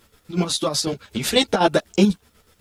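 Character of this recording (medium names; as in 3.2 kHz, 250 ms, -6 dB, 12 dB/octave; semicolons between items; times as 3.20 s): chopped level 8.1 Hz, depth 60%, duty 50%; a quantiser's noise floor 12-bit, dither none; a shimmering, thickened sound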